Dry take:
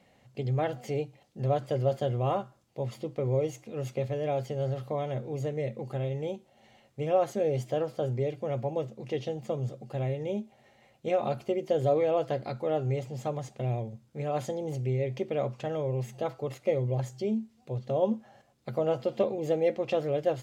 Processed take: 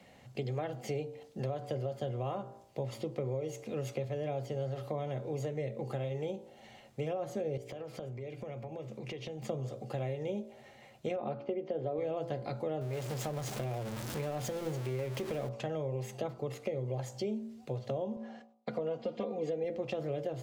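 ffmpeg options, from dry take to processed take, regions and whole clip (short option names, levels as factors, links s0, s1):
-filter_complex "[0:a]asettb=1/sr,asplit=3[s0][s1][s2];[s0]atrim=end=7.574[s3];[s1]atrim=start=7.57:end=9.42,asetpts=PTS-STARTPTS,afade=t=in:d=0.004:c=qsin,afade=t=out:st=1.846:d=0.004:c=qsin,acompressor=threshold=0.00708:ratio=10:attack=3.2:release=140:knee=1:detection=peak,equalizer=f=2300:w=3.5:g=7[s4];[s2]atrim=start=9.416[s5];[s3][s4]acrossfade=d=0.004:c1=hsin:c2=qsin[s6];[s6][s5]acrossfade=d=0.004:c1=qsin:c2=hsin,asettb=1/sr,asplit=3[s7][s8][s9];[s7]atrim=end=11.164[s10];[s8]atrim=start=11.16:end=11.98,asetpts=PTS-STARTPTS,afade=t=in:d=0.004:c=qsin,afade=t=out:st=0.816:d=0.004:c=qsin,highpass=200,lowpass=4100,aemphasis=mode=reproduction:type=75fm[s11];[s9]atrim=start=11.976[s12];[s10][s11]acrossfade=d=0.004:c1=hsin:c2=qsin[s13];[s13][s12]acrossfade=d=0.004:c1=qsin:c2=hsin,asettb=1/sr,asplit=3[s14][s15][s16];[s14]atrim=end=12.814[s17];[s15]atrim=start=12.81:end=15.49,asetpts=PTS-STARTPTS,afade=t=in:d=0.004:c=qsin,afade=t=out:st=2.676:d=0.004:c=qsin,aeval=exprs='val(0)+0.5*0.0178*sgn(val(0))':c=same,acompressor=threshold=0.0282:ratio=2:attack=3.2:release=140:knee=1:detection=peak[s18];[s16]atrim=start=15.486[s19];[s17][s18]acrossfade=d=0.004:c1=hsin:c2=qsin[s20];[s20][s19]acrossfade=d=0.004:c1=qsin:c2=hsin,asettb=1/sr,asplit=3[s21][s22][s23];[s21]atrim=end=18.164[s24];[s22]atrim=start=18.16:end=19.64,asetpts=PTS-STARTPTS,afade=t=in:d=0.004:c=qsin,afade=t=out:st=1.476:d=0.004:c=qsin,agate=range=0.0224:threshold=0.00158:ratio=3:release=100:detection=peak,highpass=150,lowpass=5400,aecho=1:1:4.2:0.75,atrim=end_sample=65268[s25];[s23]atrim=start=19.636[s26];[s24][s25]acrossfade=d=0.004:c1=hsin:c2=qsin[s27];[s27][s26]acrossfade=d=0.004:c1=qsin:c2=hsin,bandreject=f=56.46:t=h:w=4,bandreject=f=112.92:t=h:w=4,bandreject=f=169.38:t=h:w=4,bandreject=f=225.84:t=h:w=4,bandreject=f=282.3:t=h:w=4,bandreject=f=338.76:t=h:w=4,bandreject=f=395.22:t=h:w=4,bandreject=f=451.68:t=h:w=4,bandreject=f=508.14:t=h:w=4,bandreject=f=564.6:t=h:w=4,bandreject=f=621.06:t=h:w=4,bandreject=f=677.52:t=h:w=4,bandreject=f=733.98:t=h:w=4,bandreject=f=790.44:t=h:w=4,bandreject=f=846.9:t=h:w=4,bandreject=f=903.36:t=h:w=4,bandreject=f=959.82:t=h:w=4,bandreject=f=1016.28:t=h:w=4,bandreject=f=1072.74:t=h:w=4,bandreject=f=1129.2:t=h:w=4,bandreject=f=1185.66:t=h:w=4,bandreject=f=1242.12:t=h:w=4,alimiter=limit=0.0944:level=0:latency=1:release=196,acrossover=split=91|350[s28][s29][s30];[s28]acompressor=threshold=0.00112:ratio=4[s31];[s29]acompressor=threshold=0.00501:ratio=4[s32];[s30]acompressor=threshold=0.00708:ratio=4[s33];[s31][s32][s33]amix=inputs=3:normalize=0,volume=1.78"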